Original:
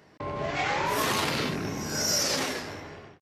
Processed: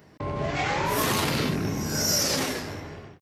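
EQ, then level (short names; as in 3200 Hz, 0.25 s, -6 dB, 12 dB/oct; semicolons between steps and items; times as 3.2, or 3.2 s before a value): low shelf 280 Hz +8 dB; high shelf 11000 Hz +11 dB; 0.0 dB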